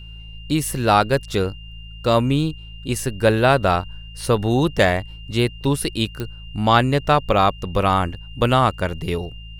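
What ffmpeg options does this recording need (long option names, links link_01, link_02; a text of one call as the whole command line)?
ffmpeg -i in.wav -af "adeclick=threshold=4,bandreject=frequency=54.7:width_type=h:width=4,bandreject=frequency=109.4:width_type=h:width=4,bandreject=frequency=164.1:width_type=h:width=4,bandreject=frequency=2800:width=30" out.wav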